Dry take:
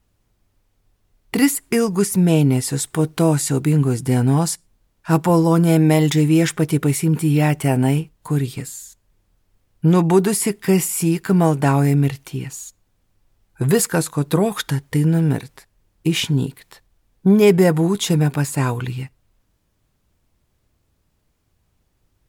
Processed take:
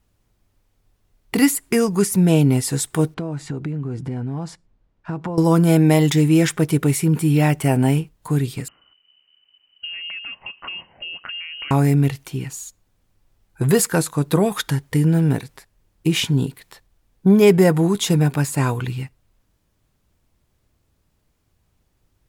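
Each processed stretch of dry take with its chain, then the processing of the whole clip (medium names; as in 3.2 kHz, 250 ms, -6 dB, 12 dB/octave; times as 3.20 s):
3.14–5.38 s: tape spacing loss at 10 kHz 25 dB + compression 8:1, threshold -22 dBFS
8.68–11.71 s: compression 16:1, threshold -28 dBFS + frequency inversion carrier 3 kHz
whole clip: none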